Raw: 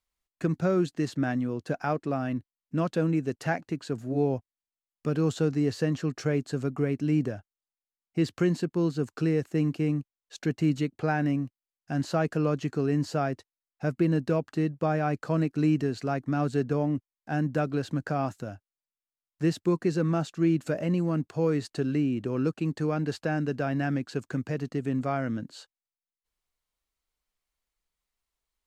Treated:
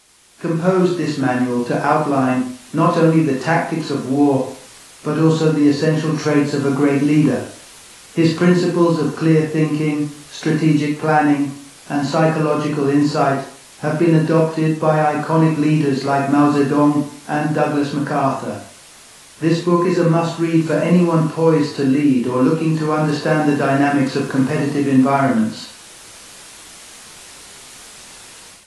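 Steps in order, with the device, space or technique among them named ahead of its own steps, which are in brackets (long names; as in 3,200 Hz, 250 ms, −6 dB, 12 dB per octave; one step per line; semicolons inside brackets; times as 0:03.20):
filmed off a television (band-pass filter 160–7,200 Hz; parametric band 1,000 Hz +10.5 dB 0.25 octaves; convolution reverb RT60 0.45 s, pre-delay 20 ms, DRR −2 dB; white noise bed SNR 24 dB; automatic gain control gain up to 13 dB; level −1 dB; AAC 32 kbit/s 24,000 Hz)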